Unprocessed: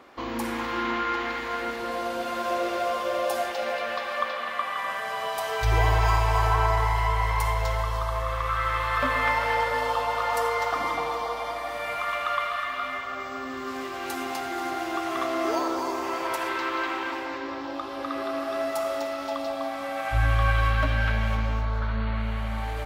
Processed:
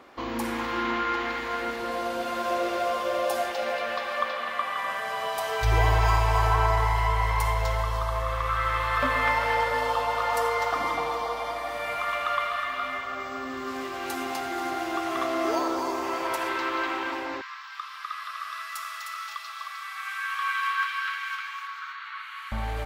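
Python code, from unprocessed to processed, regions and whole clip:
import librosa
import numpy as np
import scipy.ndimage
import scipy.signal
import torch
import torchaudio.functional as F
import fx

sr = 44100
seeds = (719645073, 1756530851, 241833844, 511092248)

y = fx.chain(x, sr, fx.cheby1_highpass(hz=1100.0, order=5),
    fx.echo_single(ms=308, db=-5.5), at=(17.41, 22.52))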